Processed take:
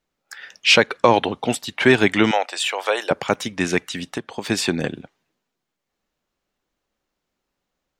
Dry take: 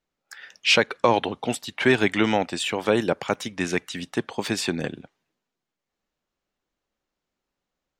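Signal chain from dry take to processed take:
0:02.31–0:03.11: high-pass filter 540 Hz 24 dB per octave
0:03.93–0:04.50: downward compressor 6 to 1, threshold −29 dBFS, peak gain reduction 10.5 dB
level +4.5 dB

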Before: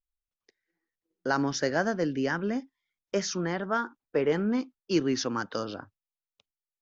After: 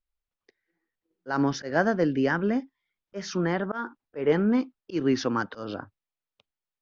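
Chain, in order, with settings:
low-pass filter 4,500 Hz 12 dB per octave
high-shelf EQ 2,700 Hz −4 dB
volume swells 161 ms
level +4.5 dB

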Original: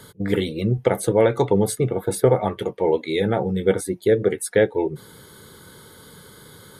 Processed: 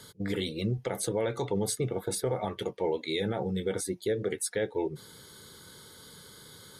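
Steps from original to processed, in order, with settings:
parametric band 5,300 Hz +9 dB 1.7 octaves
brickwall limiter −12.5 dBFS, peak gain reduction 8 dB
level −8 dB

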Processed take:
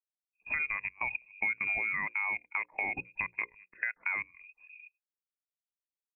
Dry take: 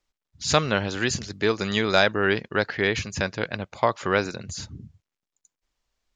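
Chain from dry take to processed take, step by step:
in parallel at +1 dB: brickwall limiter −11 dBFS, peak gain reduction 8 dB
on the sum: high-pass filter 73 Hz 6 dB per octave
parametric band 1,300 Hz −5 dB 0.41 octaves
output level in coarse steps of 22 dB
voice inversion scrambler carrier 2,600 Hz
downward compressor 6 to 1, threshold −26 dBFS, peak gain reduction 9.5 dB
mains-hum notches 60/120/180/240/300/360/420/480/540 Hz
every bin expanded away from the loudest bin 1.5 to 1
level −5 dB

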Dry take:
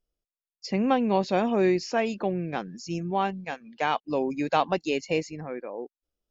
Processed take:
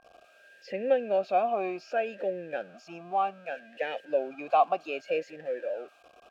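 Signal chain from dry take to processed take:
converter with a step at zero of −36.5 dBFS
steady tone 1,600 Hz −53 dBFS
formant filter swept between two vowels a-e 0.65 Hz
level +6 dB

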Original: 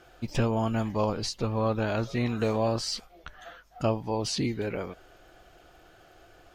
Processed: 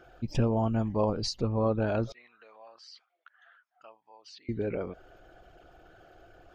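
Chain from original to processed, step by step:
spectral envelope exaggerated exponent 1.5
0:02.12–0:04.49: four-pole ladder band-pass 2,000 Hz, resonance 20%

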